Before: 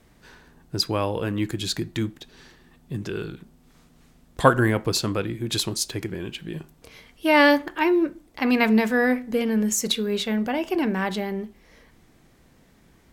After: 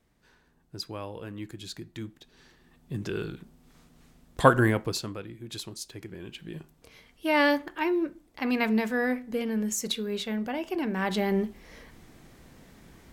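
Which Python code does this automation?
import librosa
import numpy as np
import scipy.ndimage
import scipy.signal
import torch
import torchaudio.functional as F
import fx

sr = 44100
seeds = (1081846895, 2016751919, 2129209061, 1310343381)

y = fx.gain(x, sr, db=fx.line((1.88, -13.0), (3.09, -2.0), (4.68, -2.0), (5.2, -13.0), (5.92, -13.0), (6.46, -6.5), (10.87, -6.5), (11.36, 4.0)))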